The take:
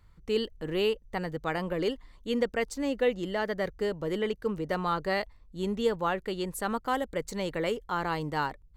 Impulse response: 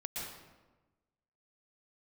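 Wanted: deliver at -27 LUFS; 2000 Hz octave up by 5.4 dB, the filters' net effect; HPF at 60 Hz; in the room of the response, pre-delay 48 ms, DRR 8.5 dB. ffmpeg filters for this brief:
-filter_complex "[0:a]highpass=60,equalizer=f=2k:t=o:g=6.5,asplit=2[a][b];[1:a]atrim=start_sample=2205,adelay=48[c];[b][c]afir=irnorm=-1:irlink=0,volume=-9.5dB[d];[a][d]amix=inputs=2:normalize=0,volume=2.5dB"

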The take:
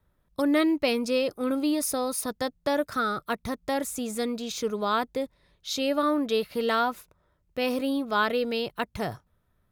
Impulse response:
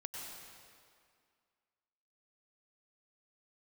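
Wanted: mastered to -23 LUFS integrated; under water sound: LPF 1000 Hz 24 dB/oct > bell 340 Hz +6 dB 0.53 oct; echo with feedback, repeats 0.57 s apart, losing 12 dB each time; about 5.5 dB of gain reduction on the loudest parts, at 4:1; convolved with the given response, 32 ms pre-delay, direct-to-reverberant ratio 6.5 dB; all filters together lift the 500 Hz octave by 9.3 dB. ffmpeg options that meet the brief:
-filter_complex "[0:a]equalizer=f=500:t=o:g=9,acompressor=threshold=-20dB:ratio=4,aecho=1:1:570|1140|1710:0.251|0.0628|0.0157,asplit=2[a][b];[1:a]atrim=start_sample=2205,adelay=32[c];[b][c]afir=irnorm=-1:irlink=0,volume=-5.5dB[d];[a][d]amix=inputs=2:normalize=0,lowpass=f=1k:w=0.5412,lowpass=f=1k:w=1.3066,equalizer=f=340:t=o:w=0.53:g=6,volume=0.5dB"

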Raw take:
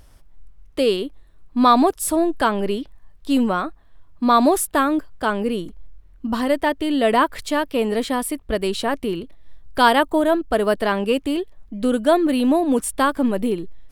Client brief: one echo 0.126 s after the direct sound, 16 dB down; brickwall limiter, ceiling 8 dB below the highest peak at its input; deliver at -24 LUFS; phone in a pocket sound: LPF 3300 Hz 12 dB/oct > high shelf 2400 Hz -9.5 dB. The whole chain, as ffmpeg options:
-af "alimiter=limit=-11dB:level=0:latency=1,lowpass=3.3k,highshelf=f=2.4k:g=-9.5,aecho=1:1:126:0.158,volume=-1dB"

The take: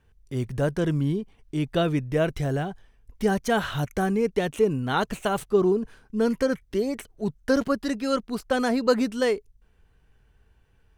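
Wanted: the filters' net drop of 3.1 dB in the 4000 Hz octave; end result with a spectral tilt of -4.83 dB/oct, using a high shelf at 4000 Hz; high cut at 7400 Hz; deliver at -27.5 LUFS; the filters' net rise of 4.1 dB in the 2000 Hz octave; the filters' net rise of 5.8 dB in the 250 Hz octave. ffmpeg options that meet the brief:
-af "lowpass=7.4k,equalizer=f=250:t=o:g=7,equalizer=f=2k:t=o:g=7.5,highshelf=f=4k:g=-6,equalizer=f=4k:t=o:g=-4,volume=-5dB"

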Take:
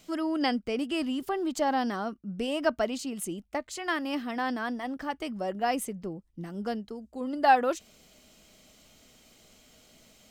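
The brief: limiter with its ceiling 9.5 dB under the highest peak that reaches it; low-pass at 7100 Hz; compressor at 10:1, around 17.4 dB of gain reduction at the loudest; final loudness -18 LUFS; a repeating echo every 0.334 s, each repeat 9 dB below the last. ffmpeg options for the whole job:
-af "lowpass=7.1k,acompressor=threshold=-33dB:ratio=10,alimiter=level_in=7dB:limit=-24dB:level=0:latency=1,volume=-7dB,aecho=1:1:334|668|1002|1336:0.355|0.124|0.0435|0.0152,volume=21.5dB"

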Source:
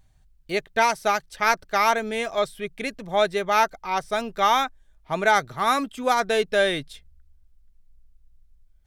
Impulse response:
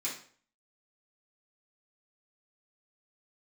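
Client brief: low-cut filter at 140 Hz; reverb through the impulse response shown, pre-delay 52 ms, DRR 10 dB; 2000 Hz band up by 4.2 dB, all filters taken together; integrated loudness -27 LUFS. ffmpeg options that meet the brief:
-filter_complex "[0:a]highpass=140,equalizer=f=2k:t=o:g=5.5,asplit=2[a][b];[1:a]atrim=start_sample=2205,adelay=52[c];[b][c]afir=irnorm=-1:irlink=0,volume=-13dB[d];[a][d]amix=inputs=2:normalize=0,volume=-5.5dB"

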